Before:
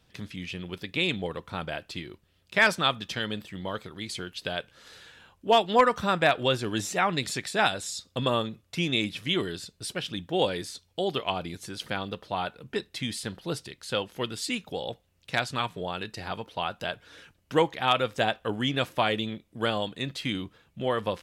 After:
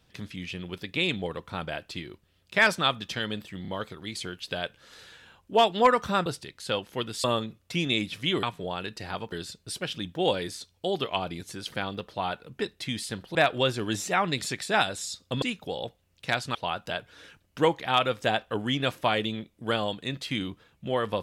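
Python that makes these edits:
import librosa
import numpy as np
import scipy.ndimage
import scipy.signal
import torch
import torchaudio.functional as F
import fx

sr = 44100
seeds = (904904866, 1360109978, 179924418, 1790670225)

y = fx.edit(x, sr, fx.stutter(start_s=3.62, slice_s=0.03, count=3),
    fx.swap(start_s=6.2, length_s=2.07, other_s=13.49, other_length_s=0.98),
    fx.move(start_s=15.6, length_s=0.89, to_s=9.46), tone=tone)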